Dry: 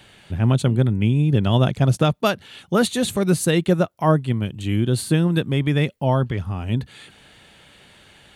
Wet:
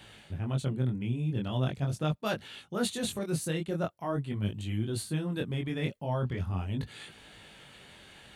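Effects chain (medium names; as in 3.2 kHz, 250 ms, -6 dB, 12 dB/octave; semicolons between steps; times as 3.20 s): reverse; compression 5:1, threshold -26 dBFS, peak gain reduction 13.5 dB; reverse; chorus 0.42 Hz, delay 18.5 ms, depth 6.6 ms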